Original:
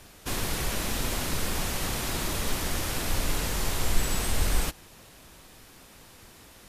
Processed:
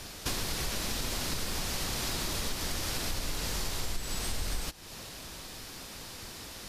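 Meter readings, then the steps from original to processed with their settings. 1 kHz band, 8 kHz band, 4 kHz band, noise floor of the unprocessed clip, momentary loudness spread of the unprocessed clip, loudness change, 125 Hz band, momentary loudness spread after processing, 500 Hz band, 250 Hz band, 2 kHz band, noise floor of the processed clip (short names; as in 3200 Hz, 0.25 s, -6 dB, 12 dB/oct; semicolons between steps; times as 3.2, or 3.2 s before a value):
-5.5 dB, -3.0 dB, -1.0 dB, -52 dBFS, 2 LU, -5.0 dB, -6.0 dB, 10 LU, -5.5 dB, -5.5 dB, -4.5 dB, -45 dBFS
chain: bell 4800 Hz +6.5 dB 0.98 oct; compressor 6:1, threshold -36 dBFS, peak gain reduction 19.5 dB; gain +5.5 dB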